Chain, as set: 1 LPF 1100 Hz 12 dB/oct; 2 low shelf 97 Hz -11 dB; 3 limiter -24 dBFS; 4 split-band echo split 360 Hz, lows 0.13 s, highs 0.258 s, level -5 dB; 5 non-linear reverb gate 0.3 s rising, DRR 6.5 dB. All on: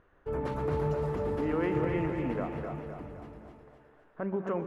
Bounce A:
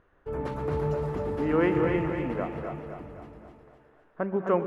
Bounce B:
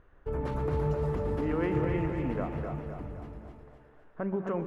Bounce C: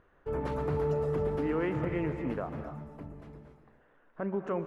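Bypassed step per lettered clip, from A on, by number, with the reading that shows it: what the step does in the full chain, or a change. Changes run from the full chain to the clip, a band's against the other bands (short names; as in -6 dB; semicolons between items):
3, momentary loudness spread change +3 LU; 2, 125 Hz band +3.5 dB; 4, echo-to-direct -1.5 dB to -6.5 dB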